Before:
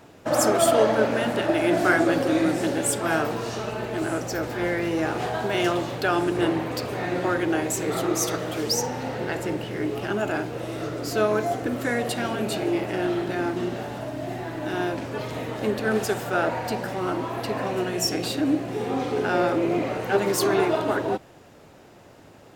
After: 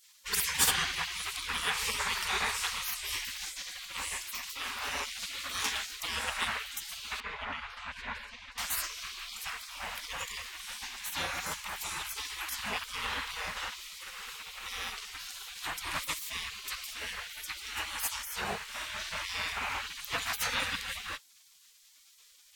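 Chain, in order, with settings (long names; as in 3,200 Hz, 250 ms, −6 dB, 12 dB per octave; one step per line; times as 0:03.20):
gate on every frequency bin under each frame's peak −25 dB weak
0:07.20–0:08.58: low-pass filter 2,200 Hz 12 dB per octave
level +5.5 dB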